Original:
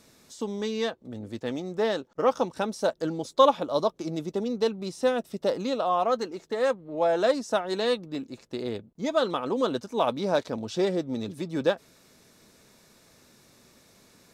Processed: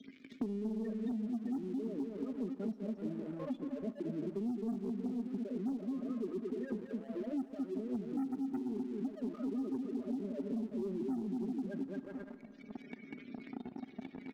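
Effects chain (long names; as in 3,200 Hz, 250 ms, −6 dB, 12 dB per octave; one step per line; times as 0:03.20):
reversed playback
downward compressor 12 to 1, threshold −38 dBFS, peak gain reduction 25.5 dB
reversed playback
low-pass filter 6,800 Hz
high-shelf EQ 2,100 Hz −3 dB
comb filter 4.9 ms, depth 66%
bouncing-ball delay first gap 220 ms, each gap 0.7×, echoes 5
dead-zone distortion −53 dBFS
gate on every frequency bin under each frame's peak −10 dB strong
formant filter i
leveller curve on the samples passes 2
high-shelf EQ 4,300 Hz +7 dB
four-comb reverb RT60 1.1 s, combs from 26 ms, DRR 15 dB
multiband upward and downward compressor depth 100%
level +7.5 dB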